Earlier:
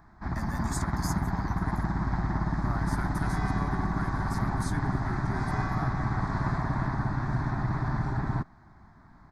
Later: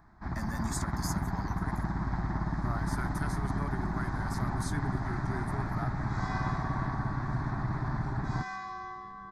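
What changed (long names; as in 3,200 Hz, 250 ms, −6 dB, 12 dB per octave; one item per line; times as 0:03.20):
first sound −3.5 dB
second sound: entry +2.90 s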